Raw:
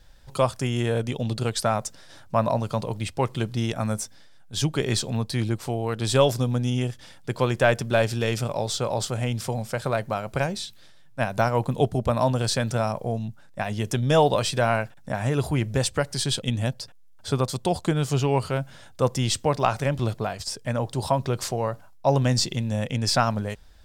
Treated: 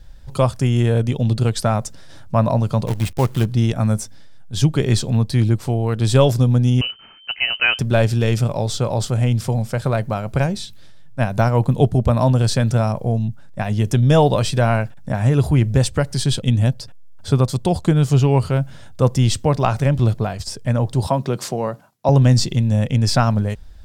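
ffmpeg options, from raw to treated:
-filter_complex "[0:a]asplit=3[a][b][c];[a]afade=t=out:st=2.86:d=0.02[d];[b]acrusher=bits=6:dc=4:mix=0:aa=0.000001,afade=t=in:st=2.86:d=0.02,afade=t=out:st=3.44:d=0.02[e];[c]afade=t=in:st=3.44:d=0.02[f];[d][e][f]amix=inputs=3:normalize=0,asettb=1/sr,asplit=3[g][h][i];[g]atrim=end=6.814[j];[h]atrim=start=6.81:end=7.79,asetpts=PTS-STARTPTS,afade=t=in:d=0.004:c=qsin,afade=t=out:st=0.976:d=0.004:c=qsin,lowpass=f=2.6k:t=q:w=0.5098,lowpass=f=2.6k:t=q:w=0.6013,lowpass=f=2.6k:t=q:w=0.9,lowpass=f=2.6k:t=q:w=2.563,afreqshift=-3100[k];[i]atrim=start=7.786[l];[j][k]acrossfade=d=0.004:c1=hsin:c2=qsin[m];[m][l]acrossfade=d=0.004:c1=qsin:c2=hsin,asettb=1/sr,asplit=3[n][o][p];[n]atrim=end=21.074[q];[o]atrim=start=21.07:end=22.09,asetpts=PTS-STARTPTS,afade=t=in:d=0.004:c=qsin,afade=t=out:st=1.016:d=0.004:c=qsin,highpass=f=150:w=0.5412,highpass=f=150:w=1.3066[r];[p]atrim=start=22.086[s];[q][r]acrossfade=d=0.004:c1=hsin:c2=qsin[t];[t][s]acrossfade=d=0.004:c1=qsin:c2=hsin,lowshelf=f=260:g=11,volume=1.5dB"

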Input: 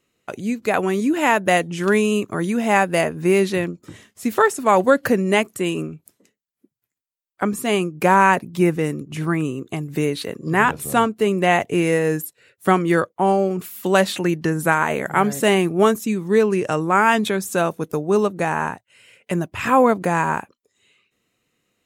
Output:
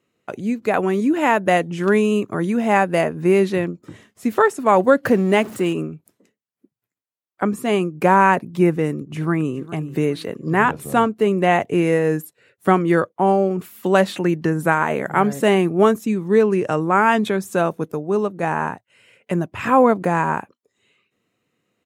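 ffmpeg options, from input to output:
-filter_complex "[0:a]asettb=1/sr,asplit=3[a][b][c];[a]atrim=end=5.054[d];[b]atrim=start=5.05:end=5.73,asetpts=PTS-STARTPTS,afade=t=in:d=0.004:c=qsin,afade=t=out:st=0.676:d=0.004:c=qsin,aeval=exprs='val(0)+0.5*0.0316*sgn(val(0))':c=same[e];[c]atrim=start=5.726[f];[d][e]acrossfade=d=0.004:c1=hsin:c2=qsin[g];[g][f]acrossfade=d=0.004:c1=qsin:c2=hsin,asplit=2[h][i];[i]afade=t=in:st=8.97:d=0.01,afade=t=out:st=9.63:d=0.01,aecho=0:1:410|820|1230:0.149624|0.0523682|0.0183289[j];[h][j]amix=inputs=2:normalize=0,asplit=3[k][l][m];[k]atrim=end=17.922[n];[l]atrim=start=17.918:end=18.432,asetpts=PTS-STARTPTS,volume=-3.5dB[o];[m]atrim=start=18.428[p];[n][o]acrossfade=d=0.004:c1=hsin:c2=hsin[q];[q][p]acrossfade=d=0.004:c1=hsin:c2=hsin,highpass=89,highshelf=f=2.6k:g=-9,volume=1.5dB"

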